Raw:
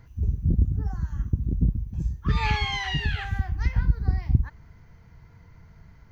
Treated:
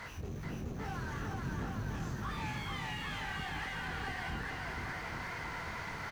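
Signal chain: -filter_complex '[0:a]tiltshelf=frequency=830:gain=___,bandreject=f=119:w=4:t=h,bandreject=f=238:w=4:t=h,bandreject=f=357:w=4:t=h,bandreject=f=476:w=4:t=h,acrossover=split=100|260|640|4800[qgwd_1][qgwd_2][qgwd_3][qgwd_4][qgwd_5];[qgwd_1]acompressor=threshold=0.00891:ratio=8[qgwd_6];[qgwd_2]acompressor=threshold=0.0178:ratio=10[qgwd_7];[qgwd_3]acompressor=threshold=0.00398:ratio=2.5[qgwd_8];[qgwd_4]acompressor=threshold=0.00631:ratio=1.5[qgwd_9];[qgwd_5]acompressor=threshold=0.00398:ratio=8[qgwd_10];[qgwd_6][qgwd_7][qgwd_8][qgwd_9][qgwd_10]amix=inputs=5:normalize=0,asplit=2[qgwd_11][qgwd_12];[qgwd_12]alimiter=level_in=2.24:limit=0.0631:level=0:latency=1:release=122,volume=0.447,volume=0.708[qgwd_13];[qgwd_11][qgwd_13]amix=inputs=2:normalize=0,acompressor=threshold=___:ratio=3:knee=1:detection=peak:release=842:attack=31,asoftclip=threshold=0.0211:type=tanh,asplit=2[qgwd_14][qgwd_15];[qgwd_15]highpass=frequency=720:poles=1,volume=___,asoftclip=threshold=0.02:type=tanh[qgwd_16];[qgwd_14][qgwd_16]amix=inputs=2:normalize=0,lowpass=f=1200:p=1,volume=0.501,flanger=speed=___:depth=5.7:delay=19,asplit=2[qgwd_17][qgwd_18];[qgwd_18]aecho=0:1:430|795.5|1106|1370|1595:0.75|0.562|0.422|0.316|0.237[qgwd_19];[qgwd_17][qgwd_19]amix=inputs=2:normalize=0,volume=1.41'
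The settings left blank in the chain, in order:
-7.5, 0.00891, 56.2, 2.2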